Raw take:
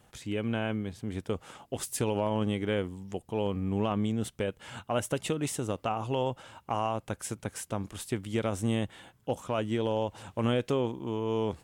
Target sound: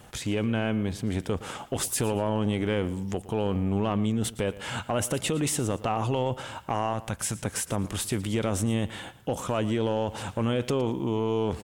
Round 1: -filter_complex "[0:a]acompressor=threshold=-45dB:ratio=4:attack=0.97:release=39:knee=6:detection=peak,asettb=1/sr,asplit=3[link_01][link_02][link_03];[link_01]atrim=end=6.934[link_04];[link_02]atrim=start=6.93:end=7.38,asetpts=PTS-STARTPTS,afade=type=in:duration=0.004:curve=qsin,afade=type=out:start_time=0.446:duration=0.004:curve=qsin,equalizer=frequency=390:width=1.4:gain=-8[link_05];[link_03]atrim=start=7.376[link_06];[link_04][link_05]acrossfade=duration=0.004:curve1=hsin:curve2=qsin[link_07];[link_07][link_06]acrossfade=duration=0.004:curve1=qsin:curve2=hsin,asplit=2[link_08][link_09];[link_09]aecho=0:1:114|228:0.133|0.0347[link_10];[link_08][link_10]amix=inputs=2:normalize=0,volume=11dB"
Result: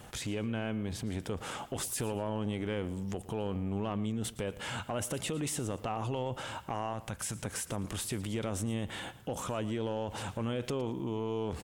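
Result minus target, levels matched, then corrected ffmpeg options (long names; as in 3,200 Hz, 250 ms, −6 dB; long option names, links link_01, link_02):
downward compressor: peak gain reduction +8 dB
-filter_complex "[0:a]acompressor=threshold=-34.5dB:ratio=4:attack=0.97:release=39:knee=6:detection=peak,asettb=1/sr,asplit=3[link_01][link_02][link_03];[link_01]atrim=end=6.934[link_04];[link_02]atrim=start=6.93:end=7.38,asetpts=PTS-STARTPTS,afade=type=in:duration=0.004:curve=qsin,afade=type=out:start_time=0.446:duration=0.004:curve=qsin,equalizer=frequency=390:width=1.4:gain=-8[link_05];[link_03]atrim=start=7.376[link_06];[link_04][link_05]acrossfade=duration=0.004:curve1=hsin:curve2=qsin[link_07];[link_07][link_06]acrossfade=duration=0.004:curve1=qsin:curve2=hsin,asplit=2[link_08][link_09];[link_09]aecho=0:1:114|228:0.133|0.0347[link_10];[link_08][link_10]amix=inputs=2:normalize=0,volume=11dB"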